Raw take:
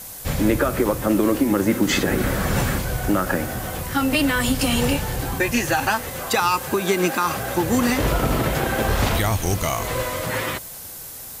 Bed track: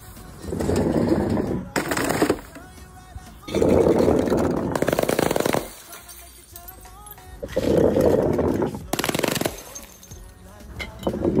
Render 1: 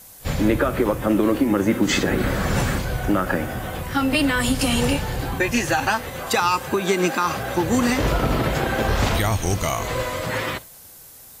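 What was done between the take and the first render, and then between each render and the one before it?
noise print and reduce 8 dB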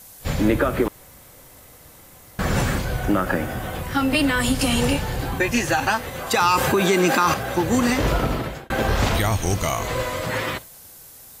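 0.88–2.39 room tone; 6.4–7.34 fast leveller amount 70%; 8.18–8.7 fade out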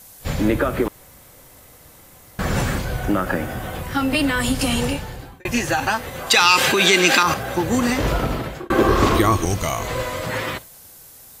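4.72–5.45 fade out; 6.3–7.23 weighting filter D; 8.6–9.45 small resonant body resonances 350/1100 Hz, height 15 dB, ringing for 30 ms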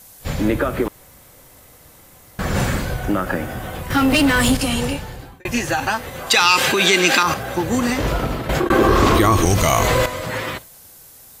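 2.5–2.94 doubler 45 ms -3.5 dB; 3.9–4.57 sample leveller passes 2; 8.49–10.06 fast leveller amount 70%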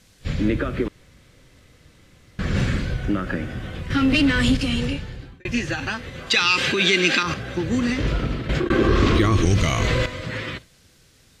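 LPF 4100 Hz 12 dB/oct; bell 820 Hz -14 dB 1.3 oct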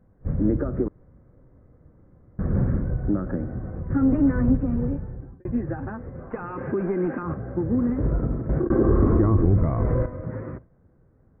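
self-modulated delay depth 0.14 ms; Gaussian blur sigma 8.2 samples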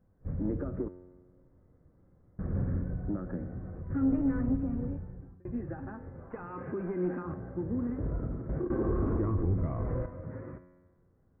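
soft clip -11.5 dBFS, distortion -20 dB; resonator 90 Hz, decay 1.3 s, harmonics all, mix 70%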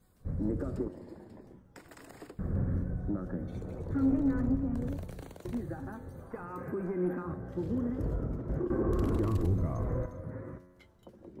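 add bed track -29 dB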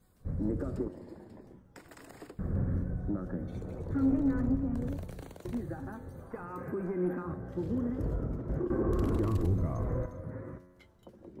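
nothing audible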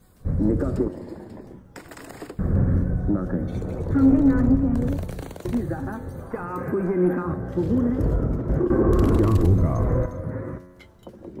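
gain +11 dB

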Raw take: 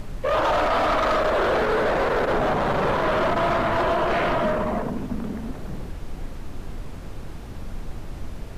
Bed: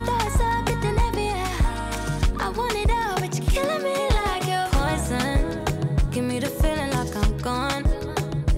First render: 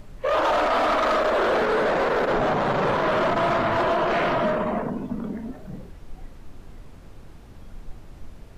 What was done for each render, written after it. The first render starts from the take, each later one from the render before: noise print and reduce 9 dB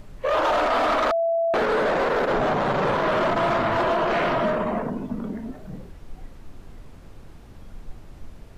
1.11–1.54 bleep 667 Hz -19 dBFS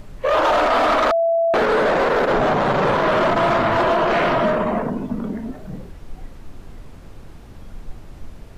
gain +4.5 dB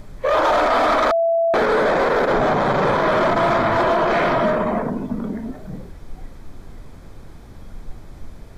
notch 2800 Hz, Q 7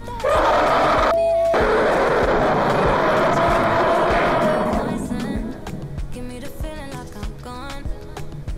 add bed -8 dB

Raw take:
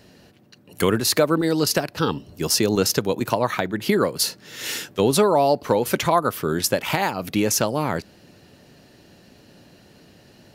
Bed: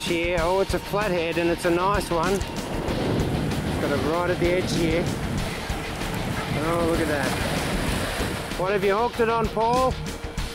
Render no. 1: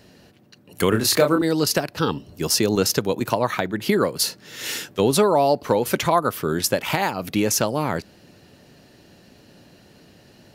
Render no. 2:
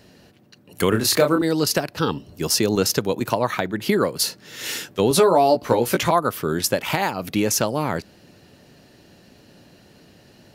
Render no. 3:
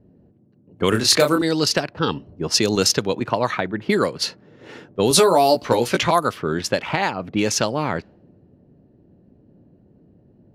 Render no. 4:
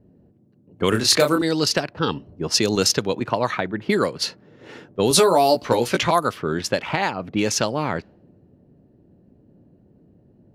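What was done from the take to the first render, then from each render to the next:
0.89–1.42 doubler 28 ms -5 dB
5.09–6.11 doubler 17 ms -4 dB
low-pass opened by the level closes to 350 Hz, open at -13 dBFS; high shelf 3100 Hz +10.5 dB
gain -1 dB

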